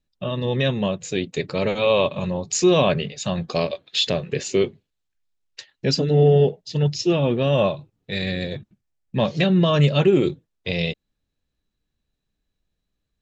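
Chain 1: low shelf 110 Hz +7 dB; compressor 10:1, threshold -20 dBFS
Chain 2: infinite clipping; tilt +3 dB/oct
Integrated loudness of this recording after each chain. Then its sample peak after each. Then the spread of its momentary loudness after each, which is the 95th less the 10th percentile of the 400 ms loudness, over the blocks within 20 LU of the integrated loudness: -26.0, -17.5 LUFS; -9.0, -7.5 dBFS; 8, 7 LU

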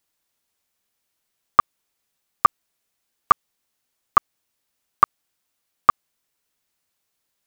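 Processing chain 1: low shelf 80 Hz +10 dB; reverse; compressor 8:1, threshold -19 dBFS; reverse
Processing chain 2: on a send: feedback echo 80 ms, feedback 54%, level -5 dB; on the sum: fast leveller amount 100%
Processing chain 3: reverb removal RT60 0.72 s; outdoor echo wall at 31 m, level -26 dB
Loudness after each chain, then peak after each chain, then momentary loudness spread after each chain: -29.5, -15.5, -21.0 LUFS; -3.5, -2.5, -3.0 dBFS; 0, 18, 0 LU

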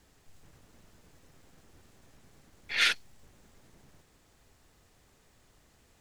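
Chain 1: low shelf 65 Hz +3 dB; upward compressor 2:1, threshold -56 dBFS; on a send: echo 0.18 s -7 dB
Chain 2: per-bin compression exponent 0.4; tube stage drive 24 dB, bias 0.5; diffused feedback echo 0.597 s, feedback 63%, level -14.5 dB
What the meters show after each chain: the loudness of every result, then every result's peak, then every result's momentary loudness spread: -28.0, -37.0 LUFS; -10.5, -21.5 dBFS; 9, 11 LU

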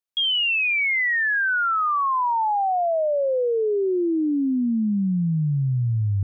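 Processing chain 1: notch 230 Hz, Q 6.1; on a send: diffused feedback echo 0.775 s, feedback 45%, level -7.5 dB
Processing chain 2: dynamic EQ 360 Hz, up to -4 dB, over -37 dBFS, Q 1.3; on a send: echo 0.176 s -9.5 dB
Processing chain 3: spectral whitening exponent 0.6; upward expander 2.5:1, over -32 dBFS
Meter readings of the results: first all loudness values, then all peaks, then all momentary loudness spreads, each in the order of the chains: -21.0, -21.5, -21.5 LUFS; -11.5, -16.0, -18.5 dBFS; 4, 7, 4 LU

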